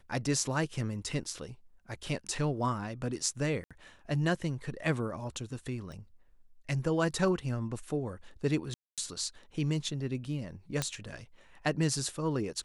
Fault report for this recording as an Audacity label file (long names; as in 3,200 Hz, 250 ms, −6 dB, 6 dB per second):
3.640000	3.710000	drop-out 66 ms
5.920000	5.920000	click
8.740000	8.980000	drop-out 237 ms
10.820000	10.820000	click −15 dBFS